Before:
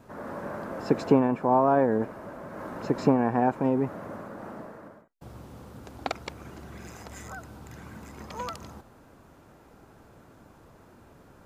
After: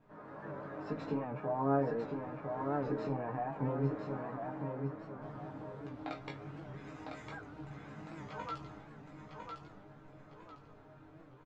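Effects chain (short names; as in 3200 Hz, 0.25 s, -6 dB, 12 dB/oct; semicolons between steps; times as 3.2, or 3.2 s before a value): LPF 3100 Hz 12 dB/oct; comb 6.7 ms, depth 39%; AGC gain up to 6 dB; limiter -13.5 dBFS, peak gain reduction 11.5 dB; resonator bank G#2 sus4, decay 0.21 s; chorus voices 4, 0.23 Hz, delay 18 ms, depth 4.6 ms; feedback echo 1.004 s, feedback 33%, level -5 dB; record warp 78 rpm, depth 100 cents; gain +2.5 dB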